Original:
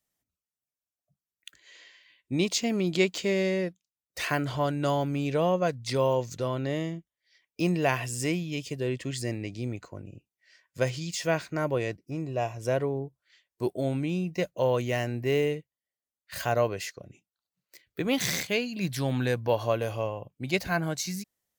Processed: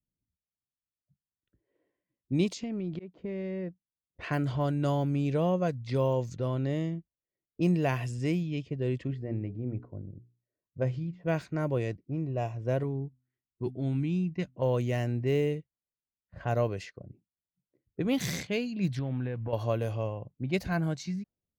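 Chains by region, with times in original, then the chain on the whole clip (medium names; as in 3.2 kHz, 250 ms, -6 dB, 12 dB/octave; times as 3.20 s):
2.53–4.19 s: Chebyshev low-pass 6.9 kHz + slow attack 334 ms + compression 8:1, threshold -30 dBFS
9.07–11.26 s: low-pass 1.1 kHz 6 dB/octave + hum notches 60/120/180/240/300/360/420 Hz
12.83–14.62 s: peaking EQ 560 Hz -13 dB 0.69 oct + de-hum 126.9 Hz, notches 2
18.99–19.53 s: block-companded coder 5-bit + low-pass 3.3 kHz 24 dB/octave + compression 2.5:1, threshold -32 dBFS
whole clip: level-controlled noise filter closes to 330 Hz, open at -24.5 dBFS; bass shelf 360 Hz +11 dB; trim -7 dB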